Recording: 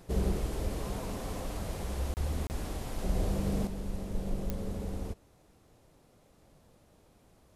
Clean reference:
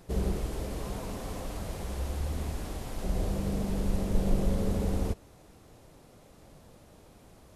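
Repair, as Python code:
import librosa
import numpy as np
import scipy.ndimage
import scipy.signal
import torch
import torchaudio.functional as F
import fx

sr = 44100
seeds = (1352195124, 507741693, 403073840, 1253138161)

y = fx.fix_declick_ar(x, sr, threshold=10.0)
y = fx.fix_deplosive(y, sr, at_s=(0.63,))
y = fx.fix_interpolate(y, sr, at_s=(2.14, 2.47), length_ms=29.0)
y = fx.gain(y, sr, db=fx.steps((0.0, 0.0), (3.67, 7.5)))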